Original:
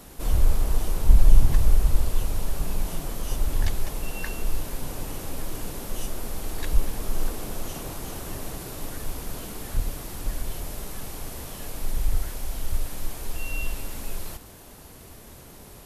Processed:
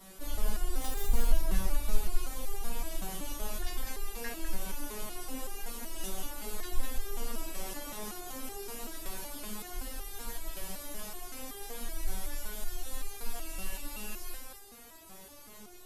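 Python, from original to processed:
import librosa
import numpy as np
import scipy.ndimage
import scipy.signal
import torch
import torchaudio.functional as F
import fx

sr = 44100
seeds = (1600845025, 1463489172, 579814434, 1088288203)

y = fx.zero_step(x, sr, step_db=-25.0, at=(0.76, 1.21))
y = fx.low_shelf(y, sr, hz=400.0, db=-5.0)
y = y + 10.0 ** (-4.0 / 20.0) * np.pad(y, (int(203 * sr / 1000.0), 0))[:len(y)]
y = fx.resonator_held(y, sr, hz=5.3, low_hz=190.0, high_hz=400.0)
y = y * librosa.db_to_amplitude(8.5)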